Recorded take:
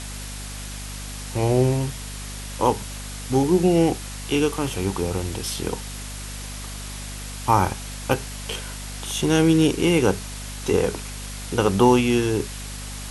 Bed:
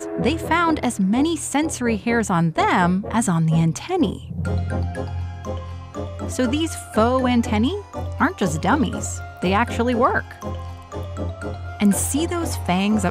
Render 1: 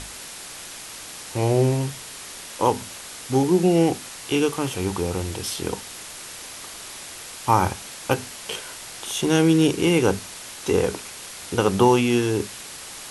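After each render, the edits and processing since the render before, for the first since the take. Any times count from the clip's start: hum notches 50/100/150/200/250 Hz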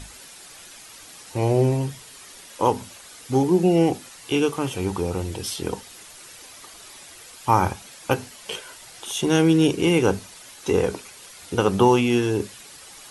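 noise reduction 9 dB, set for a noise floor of -38 dBFS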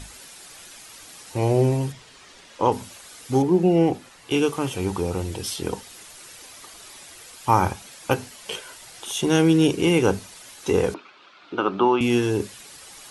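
1.92–2.72 s: distance through air 86 m; 3.42–4.31 s: treble shelf 4.2 kHz -11.5 dB; 10.94–12.01 s: cabinet simulation 310–3400 Hz, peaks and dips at 310 Hz +5 dB, 480 Hz -9 dB, 790 Hz -3 dB, 1.3 kHz +6 dB, 1.9 kHz -8 dB, 3 kHz -3 dB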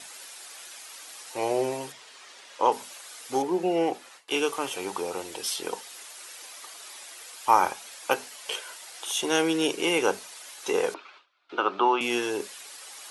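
gate with hold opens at -38 dBFS; high-pass 520 Hz 12 dB/octave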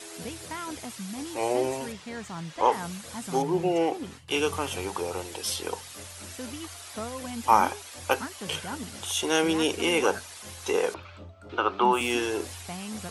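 add bed -18.5 dB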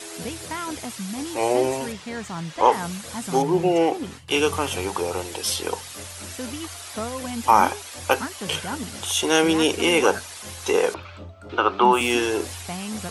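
trim +5.5 dB; peak limiter -2 dBFS, peak gain reduction 3 dB

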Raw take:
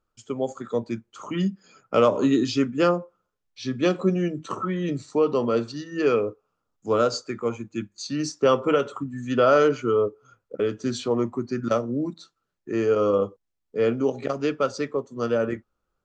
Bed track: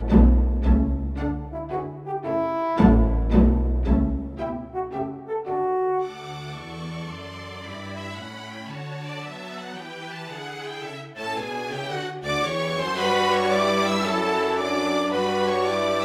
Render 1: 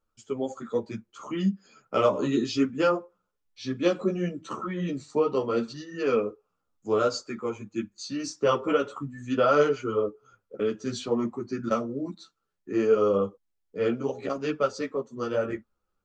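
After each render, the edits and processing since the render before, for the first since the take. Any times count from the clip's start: three-phase chorus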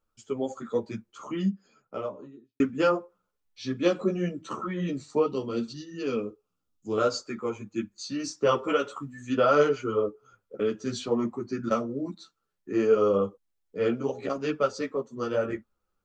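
1.07–2.60 s: studio fade out; 5.26–6.98 s: high-order bell 1 kHz -8.5 dB 2.6 oct; 8.58–9.30 s: tilt EQ +1.5 dB/octave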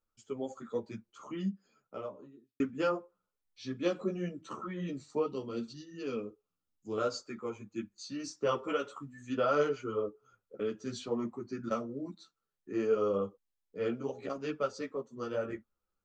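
trim -7.5 dB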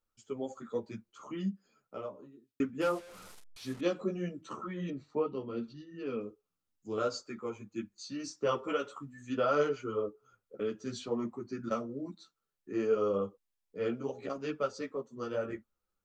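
2.81–3.81 s: one-bit delta coder 64 kbps, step -45 dBFS; 4.90–6.21 s: low-pass 2.7 kHz

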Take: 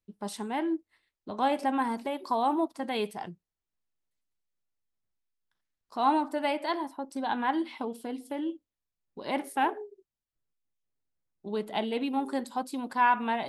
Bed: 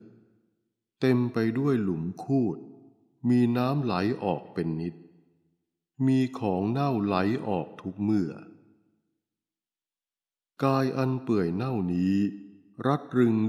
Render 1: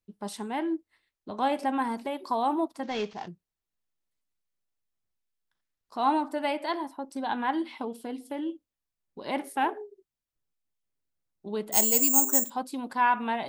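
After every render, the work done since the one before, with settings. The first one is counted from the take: 2.83–3.28 s: CVSD coder 32 kbps; 11.72–12.50 s: careless resampling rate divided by 6×, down filtered, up zero stuff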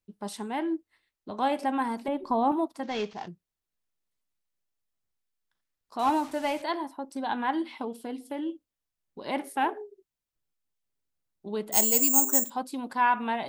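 2.08–2.52 s: tilt EQ -3.5 dB/octave; 5.99–6.62 s: one-bit delta coder 64 kbps, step -40.5 dBFS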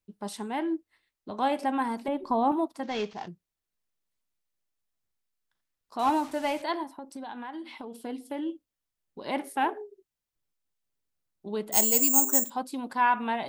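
6.83–8.03 s: compression, threshold -36 dBFS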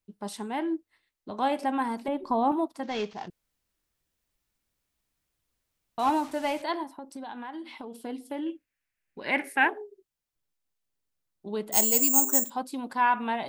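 3.30–5.98 s: room tone; 8.46–9.69 s: high-order bell 2 kHz +12.5 dB 1 oct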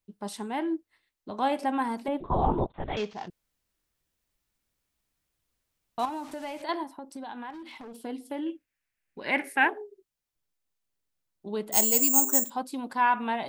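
2.20–2.97 s: LPC vocoder at 8 kHz whisper; 6.05–6.69 s: compression 3:1, threshold -35 dBFS; 7.50–7.97 s: hard clipper -40 dBFS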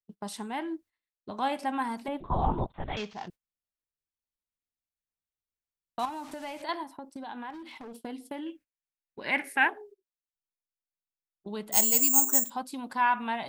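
gate -46 dBFS, range -20 dB; dynamic bell 410 Hz, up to -7 dB, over -41 dBFS, Q 0.96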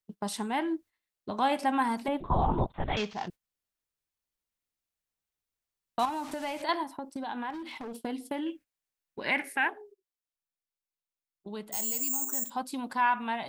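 gain riding within 4 dB 0.5 s; peak limiter -17 dBFS, peak gain reduction 10 dB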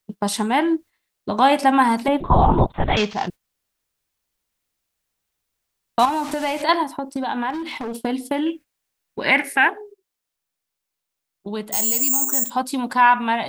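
trim +11.5 dB

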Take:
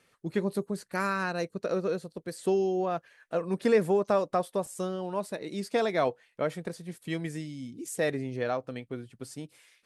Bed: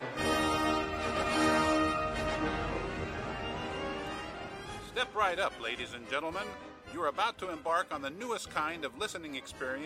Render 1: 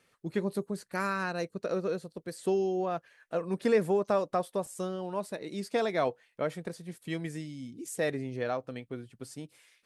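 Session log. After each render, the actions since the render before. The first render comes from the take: trim -2 dB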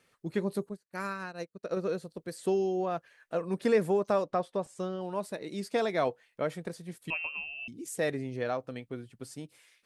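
0.69–1.77 s: upward expansion 2.5:1, over -45 dBFS; 4.24–5.01 s: distance through air 80 m; 7.10–7.68 s: frequency inversion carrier 2.9 kHz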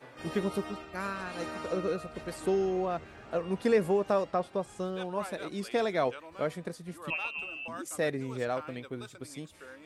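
add bed -12 dB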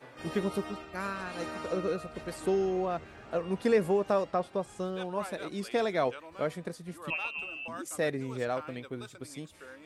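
no audible change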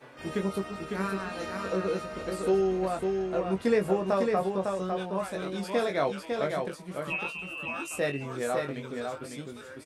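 doubling 21 ms -5.5 dB; on a send: delay 553 ms -4.5 dB

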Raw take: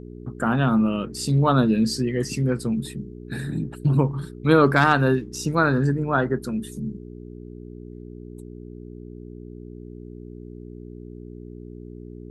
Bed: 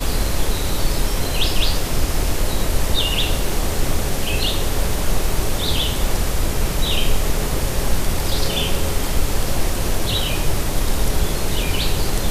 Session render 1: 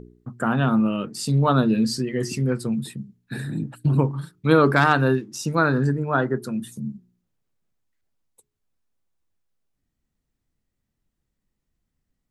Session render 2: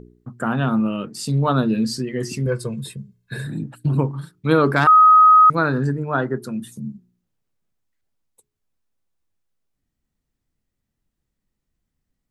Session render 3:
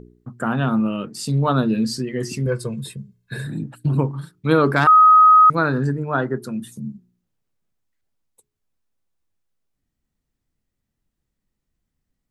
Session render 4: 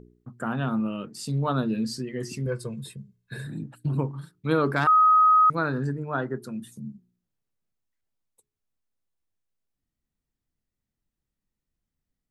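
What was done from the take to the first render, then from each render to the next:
de-hum 60 Hz, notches 7
2.46–3.47 s: comb 1.9 ms, depth 84%; 4.87–5.50 s: bleep 1.26 kHz -7 dBFS
no audible change
trim -7 dB

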